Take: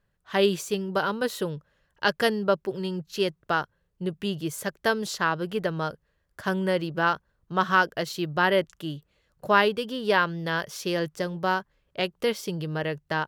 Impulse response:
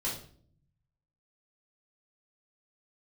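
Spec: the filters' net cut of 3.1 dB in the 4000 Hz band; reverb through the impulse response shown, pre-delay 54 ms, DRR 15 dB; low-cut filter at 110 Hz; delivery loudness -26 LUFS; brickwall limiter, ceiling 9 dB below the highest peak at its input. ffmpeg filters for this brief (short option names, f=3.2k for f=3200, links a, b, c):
-filter_complex "[0:a]highpass=110,equalizer=f=4k:t=o:g=-4.5,alimiter=limit=-15.5dB:level=0:latency=1,asplit=2[a][b];[1:a]atrim=start_sample=2205,adelay=54[c];[b][c]afir=irnorm=-1:irlink=0,volume=-19dB[d];[a][d]amix=inputs=2:normalize=0,volume=3.5dB"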